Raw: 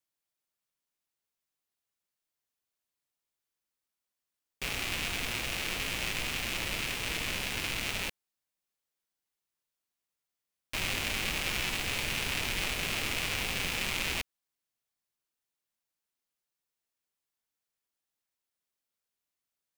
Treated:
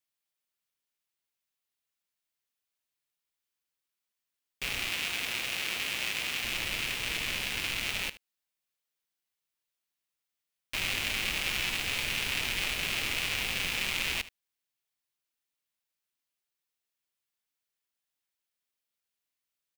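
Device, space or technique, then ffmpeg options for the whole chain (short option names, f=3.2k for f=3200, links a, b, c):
presence and air boost: -filter_complex "[0:a]asettb=1/sr,asplit=3[a][b][c];[a]atrim=end=4.894[d];[b]atrim=start=4.89:end=6.44,asetpts=PTS-STARTPTS,afade=t=in:d=0.004:c=qsin,afade=t=out:st=1.546:d=0.004:c=qsin,highpass=f=200:p=1[e];[c]atrim=start=6.436[f];[d][e]acrossfade=d=0.004:c1=hsin:c2=qsin[g];[g][f]acrossfade=d=0.004:c1=qsin:c2=hsin,equalizer=f=2.8k:t=o:w=1.9:g=5.5,highshelf=f=9.7k:g=5,aecho=1:1:75:0.141,volume=-3.5dB"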